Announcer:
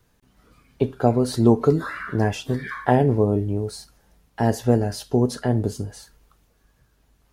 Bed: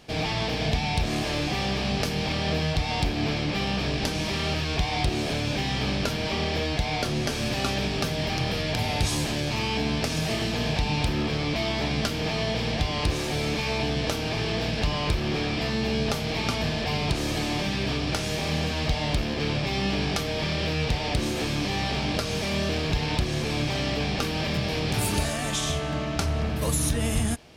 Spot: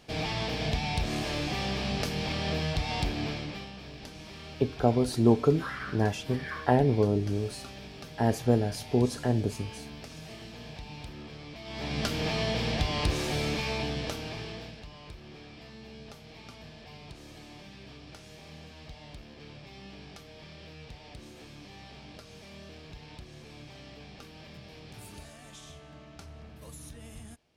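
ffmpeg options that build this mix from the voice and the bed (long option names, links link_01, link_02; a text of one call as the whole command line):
ffmpeg -i stem1.wav -i stem2.wav -filter_complex "[0:a]adelay=3800,volume=-5.5dB[link_01];[1:a]volume=10.5dB,afade=type=out:start_time=3.1:duration=0.61:silence=0.223872,afade=type=in:start_time=11.64:duration=0.49:silence=0.177828,afade=type=out:start_time=13.36:duration=1.47:silence=0.11885[link_02];[link_01][link_02]amix=inputs=2:normalize=0" out.wav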